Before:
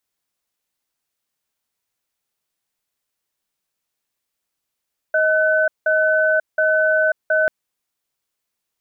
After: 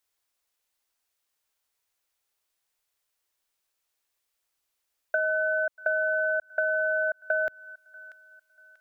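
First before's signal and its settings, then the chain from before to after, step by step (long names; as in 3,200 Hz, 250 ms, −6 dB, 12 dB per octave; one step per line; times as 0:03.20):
tone pair in a cadence 628 Hz, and 1,510 Hz, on 0.54 s, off 0.18 s, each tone −16.5 dBFS 2.34 s
parametric band 180 Hz −14 dB 1.2 octaves
delay with a high-pass on its return 638 ms, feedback 35%, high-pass 1,400 Hz, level −21.5 dB
downward compressor 6 to 1, threshold −24 dBFS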